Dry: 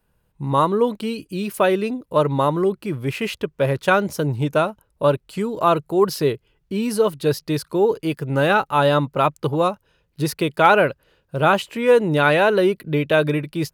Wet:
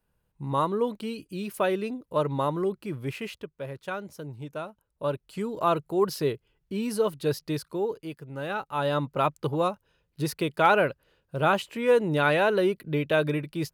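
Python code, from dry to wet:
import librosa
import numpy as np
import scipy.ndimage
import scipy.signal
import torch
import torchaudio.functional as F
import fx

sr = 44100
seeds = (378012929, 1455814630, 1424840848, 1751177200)

y = fx.gain(x, sr, db=fx.line((3.07, -8.0), (3.64, -17.0), (4.57, -17.0), (5.46, -7.0), (7.5, -7.0), (8.33, -17.0), (9.13, -6.5)))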